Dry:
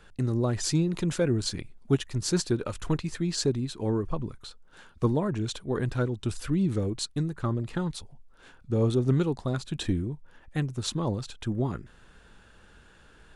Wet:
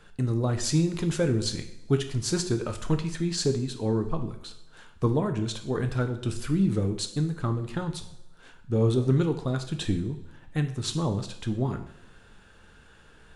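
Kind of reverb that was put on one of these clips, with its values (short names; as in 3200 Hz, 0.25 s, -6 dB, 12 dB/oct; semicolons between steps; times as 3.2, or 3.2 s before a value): two-slope reverb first 0.62 s, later 1.7 s, from -18 dB, DRR 6 dB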